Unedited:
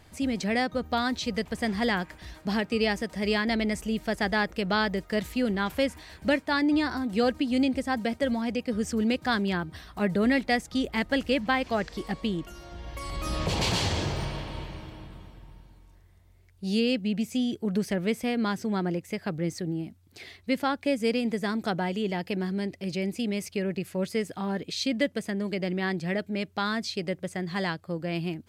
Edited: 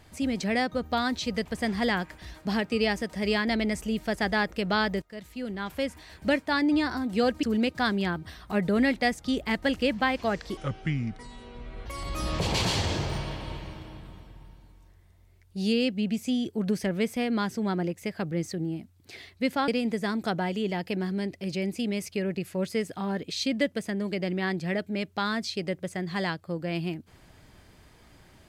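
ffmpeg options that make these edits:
-filter_complex "[0:a]asplit=6[s0][s1][s2][s3][s4][s5];[s0]atrim=end=5.02,asetpts=PTS-STARTPTS,afade=t=out:st=5.016:d=0.004:c=hsin:silence=0.125893[s6];[s1]atrim=start=5.02:end=7.432,asetpts=PTS-STARTPTS,afade=t=in:d=1.34:silence=0.125893[s7];[s2]atrim=start=8.898:end=12.044[s8];[s3]atrim=start=12.04:end=12.93,asetpts=PTS-STARTPTS,asetrate=30429,aresample=44100[s9];[s4]atrim=start=12.926:end=20.752[s10];[s5]atrim=start=21.078[s11];[s6][s7]concat=n=2:v=0:a=1[s12];[s12][s8]acrossfade=d=0.004:c1=hsin:c2=hsin[s13];[s13][s9]acrossfade=d=0.004:c1=hsin:c2=hsin[s14];[s14][s10]acrossfade=d=0.004:c1=hsin:c2=hsin[s15];[s15][s11]acrossfade=d=0.004:c1=hsin:c2=hsin"

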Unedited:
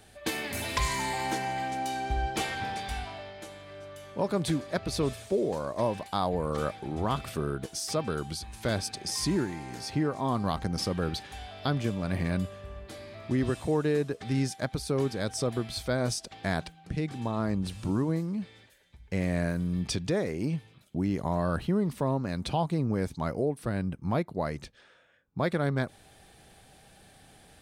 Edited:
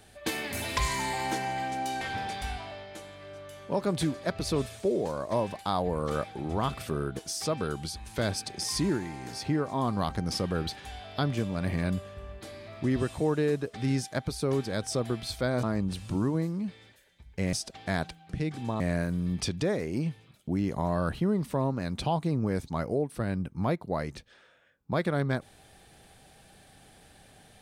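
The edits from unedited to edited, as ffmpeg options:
-filter_complex "[0:a]asplit=5[s0][s1][s2][s3][s4];[s0]atrim=end=2.012[s5];[s1]atrim=start=2.478:end=16.102[s6];[s2]atrim=start=17.368:end=19.272[s7];[s3]atrim=start=16.098:end=17.372[s8];[s4]atrim=start=19.268[s9];[s5][s6]acrossfade=d=0.004:c1=hsin:c2=hsin[s10];[s10][s7]acrossfade=d=0.004:c1=hsin:c2=hsin[s11];[s11][s8]acrossfade=d=0.004:c1=hsin:c2=hsin[s12];[s12][s9]acrossfade=d=0.004:c1=hsin:c2=hsin"

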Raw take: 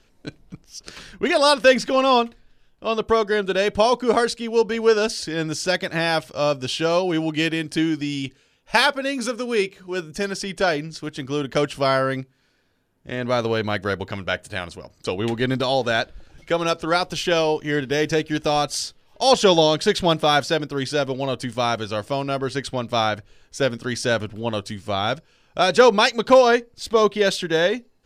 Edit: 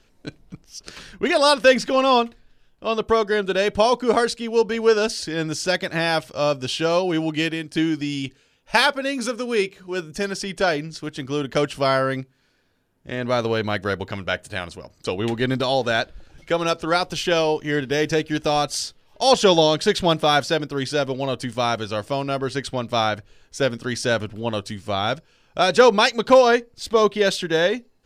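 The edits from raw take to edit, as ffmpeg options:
-filter_complex "[0:a]asplit=2[s0][s1];[s0]atrim=end=7.75,asetpts=PTS-STARTPTS,afade=t=out:st=7.34:d=0.41:silence=0.473151[s2];[s1]atrim=start=7.75,asetpts=PTS-STARTPTS,afade=t=in:d=0.004:c=hsin:silence=0.473151[s3];[s2][s3]concat=n=2:v=0:a=1"

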